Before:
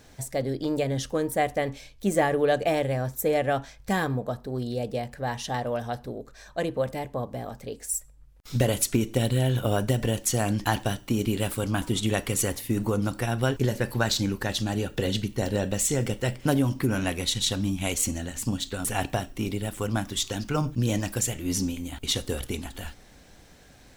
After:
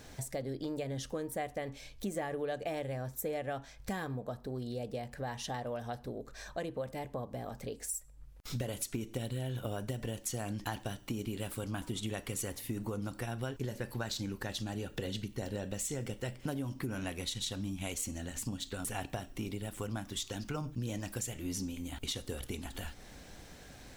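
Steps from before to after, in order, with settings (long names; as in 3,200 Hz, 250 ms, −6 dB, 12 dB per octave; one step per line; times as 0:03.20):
downward compressor 3 to 1, threshold −40 dBFS, peak gain reduction 16.5 dB
level +1 dB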